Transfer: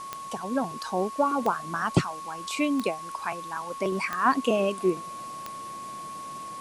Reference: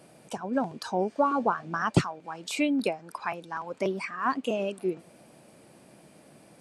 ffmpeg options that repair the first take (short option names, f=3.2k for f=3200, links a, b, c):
-af "adeclick=t=4,bandreject=f=1.1k:w=30,afwtdn=0.004,asetnsamples=n=441:p=0,asendcmd='3.92 volume volume -5dB',volume=0dB"